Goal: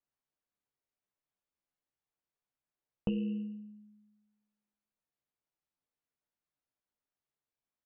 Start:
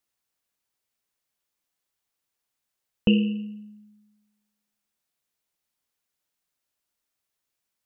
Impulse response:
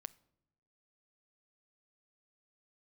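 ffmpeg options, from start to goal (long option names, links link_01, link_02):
-filter_complex "[0:a]lowpass=frequency=1100:poles=1,asplit=2[link_01][link_02];[link_02]adelay=15,volume=-4dB[link_03];[link_01][link_03]amix=inputs=2:normalize=0[link_04];[1:a]atrim=start_sample=2205,afade=type=out:start_time=0.2:duration=0.01,atrim=end_sample=9261[link_05];[link_04][link_05]afir=irnorm=-1:irlink=0,acompressor=threshold=-28dB:ratio=6,volume=-1.5dB"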